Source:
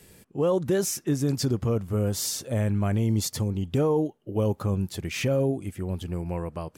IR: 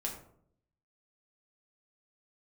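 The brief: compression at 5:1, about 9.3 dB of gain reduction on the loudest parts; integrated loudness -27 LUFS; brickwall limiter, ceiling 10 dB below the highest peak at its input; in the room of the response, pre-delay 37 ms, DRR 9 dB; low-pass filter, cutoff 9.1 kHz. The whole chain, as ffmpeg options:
-filter_complex "[0:a]lowpass=9100,acompressor=threshold=0.0316:ratio=5,alimiter=level_in=2.11:limit=0.0631:level=0:latency=1,volume=0.473,asplit=2[s0][s1];[1:a]atrim=start_sample=2205,adelay=37[s2];[s1][s2]afir=irnorm=-1:irlink=0,volume=0.316[s3];[s0][s3]amix=inputs=2:normalize=0,volume=3.98"

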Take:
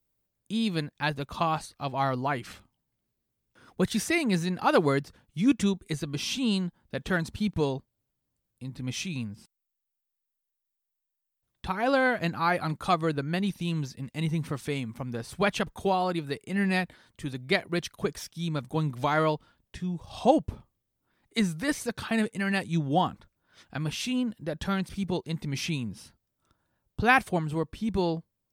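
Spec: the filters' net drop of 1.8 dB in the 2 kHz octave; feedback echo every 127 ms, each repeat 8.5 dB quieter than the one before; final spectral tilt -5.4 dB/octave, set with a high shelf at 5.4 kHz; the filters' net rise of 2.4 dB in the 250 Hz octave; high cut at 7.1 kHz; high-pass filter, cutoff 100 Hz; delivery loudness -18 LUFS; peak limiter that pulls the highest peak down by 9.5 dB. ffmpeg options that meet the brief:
-af "highpass=100,lowpass=7100,equalizer=f=250:t=o:g=3.5,equalizer=f=2000:t=o:g=-3.5,highshelf=f=5400:g=8.5,alimiter=limit=0.133:level=0:latency=1,aecho=1:1:127|254|381|508:0.376|0.143|0.0543|0.0206,volume=3.55"

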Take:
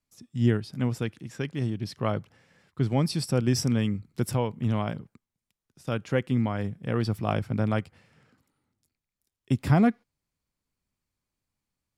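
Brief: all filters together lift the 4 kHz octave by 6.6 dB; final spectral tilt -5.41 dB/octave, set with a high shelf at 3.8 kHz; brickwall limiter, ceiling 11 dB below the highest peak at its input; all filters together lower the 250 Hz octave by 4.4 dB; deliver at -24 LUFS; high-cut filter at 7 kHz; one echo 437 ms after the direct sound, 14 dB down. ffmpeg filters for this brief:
-af "lowpass=7000,equalizer=f=250:t=o:g=-5.5,highshelf=f=3800:g=4,equalizer=f=4000:t=o:g=7,alimiter=limit=0.0944:level=0:latency=1,aecho=1:1:437:0.2,volume=2.66"

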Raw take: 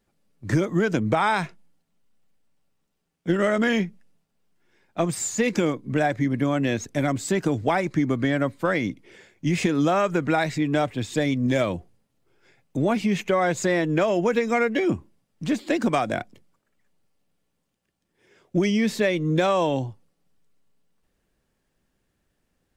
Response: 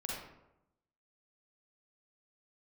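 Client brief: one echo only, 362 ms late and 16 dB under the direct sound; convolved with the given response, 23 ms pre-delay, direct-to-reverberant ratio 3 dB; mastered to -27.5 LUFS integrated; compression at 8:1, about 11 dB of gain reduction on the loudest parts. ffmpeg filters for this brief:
-filter_complex "[0:a]acompressor=threshold=0.0355:ratio=8,aecho=1:1:362:0.158,asplit=2[s0][s1];[1:a]atrim=start_sample=2205,adelay=23[s2];[s1][s2]afir=irnorm=-1:irlink=0,volume=0.596[s3];[s0][s3]amix=inputs=2:normalize=0,volume=1.58"

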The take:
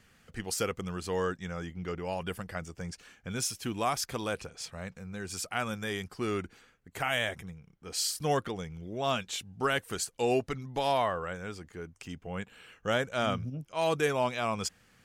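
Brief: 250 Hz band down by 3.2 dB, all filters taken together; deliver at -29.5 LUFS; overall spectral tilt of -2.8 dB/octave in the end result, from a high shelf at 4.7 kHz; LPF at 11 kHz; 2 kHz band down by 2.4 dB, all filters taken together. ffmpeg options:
-af "lowpass=11000,equalizer=f=250:t=o:g=-4.5,equalizer=f=2000:t=o:g=-4.5,highshelf=f=4700:g=7.5,volume=1.5"

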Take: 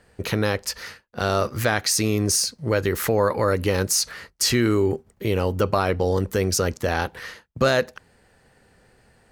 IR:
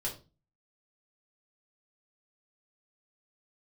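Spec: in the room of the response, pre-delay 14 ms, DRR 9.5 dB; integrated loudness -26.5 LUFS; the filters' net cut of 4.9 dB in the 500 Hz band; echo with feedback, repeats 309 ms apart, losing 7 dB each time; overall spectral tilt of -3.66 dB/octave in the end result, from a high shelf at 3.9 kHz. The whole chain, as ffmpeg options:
-filter_complex "[0:a]equalizer=f=500:t=o:g=-6,highshelf=f=3900:g=4.5,aecho=1:1:309|618|927|1236|1545:0.447|0.201|0.0905|0.0407|0.0183,asplit=2[s0][s1];[1:a]atrim=start_sample=2205,adelay=14[s2];[s1][s2]afir=irnorm=-1:irlink=0,volume=0.266[s3];[s0][s3]amix=inputs=2:normalize=0,volume=0.562"

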